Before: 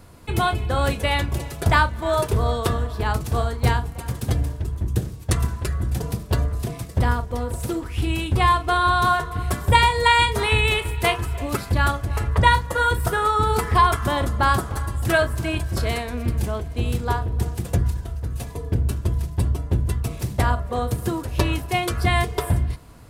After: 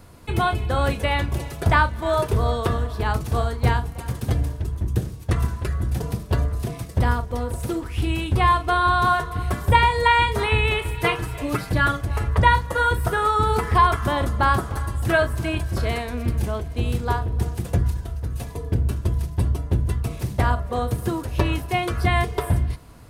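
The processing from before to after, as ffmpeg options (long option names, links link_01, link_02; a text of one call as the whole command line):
ffmpeg -i in.wav -filter_complex "[0:a]asettb=1/sr,asplit=3[link_01][link_02][link_03];[link_01]atrim=end=10.944[link_04];[link_02]atrim=start=10.94:end=12.01,asetpts=PTS-STARTPTS,afade=type=in:duration=0.004:curve=qsin,afade=type=out:start_time=1.066:duration=0.004:curve=qsin,aecho=1:1:6.5:0.65,atrim=end_sample=47187[link_05];[link_03]atrim=start=12.006[link_06];[link_04][link_05]acrossfade=duration=0.004:curve1=hsin:curve2=qsin[link_07];[link_07][link_06]acrossfade=duration=0.004:curve1=qsin:curve2=hsin,acrossover=split=3000[link_08][link_09];[link_09]acompressor=threshold=-36dB:ratio=4:attack=1:release=60[link_10];[link_08][link_10]amix=inputs=2:normalize=0,bandreject=frequency=7500:width=25" out.wav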